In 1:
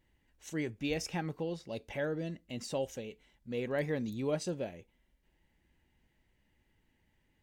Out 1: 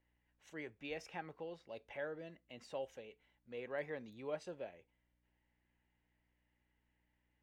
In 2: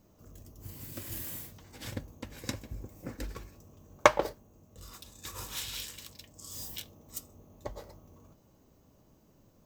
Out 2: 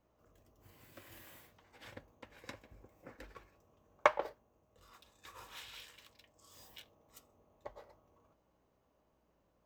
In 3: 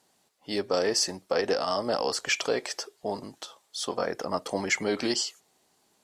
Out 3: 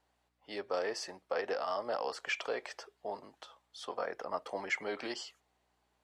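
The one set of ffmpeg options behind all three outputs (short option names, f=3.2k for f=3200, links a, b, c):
-filter_complex "[0:a]aeval=exprs='val(0)+0.000708*(sin(2*PI*60*n/s)+sin(2*PI*2*60*n/s)/2+sin(2*PI*3*60*n/s)/3+sin(2*PI*4*60*n/s)/4+sin(2*PI*5*60*n/s)/5)':c=same,acrossover=split=440 3200:gain=0.224 1 0.2[a][b][c];[a][b][c]amix=inputs=3:normalize=0,volume=-5.5dB"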